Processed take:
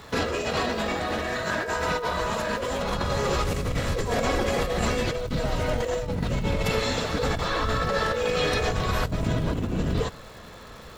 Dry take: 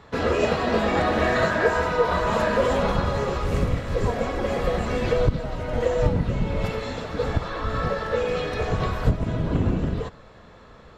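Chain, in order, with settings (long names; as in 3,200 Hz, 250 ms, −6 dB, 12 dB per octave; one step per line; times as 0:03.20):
high-shelf EQ 3,400 Hz +11.5 dB
compressor whose output falls as the input rises −26 dBFS, ratio −1
surface crackle 450 per second −41 dBFS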